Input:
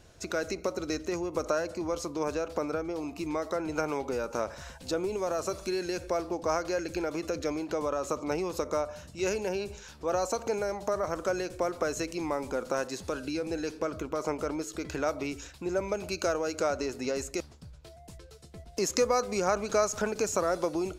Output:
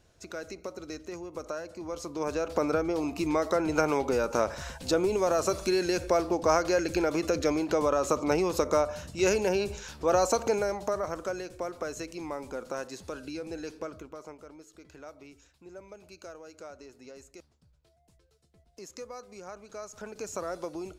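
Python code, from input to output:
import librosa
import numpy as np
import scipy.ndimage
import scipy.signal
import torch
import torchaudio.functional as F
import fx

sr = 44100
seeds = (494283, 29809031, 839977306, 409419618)

y = fx.gain(x, sr, db=fx.line((1.7, -7.5), (2.68, 5.0), (10.37, 5.0), (11.43, -5.0), (13.8, -5.0), (14.42, -16.5), (19.74, -16.5), (20.35, -7.0)))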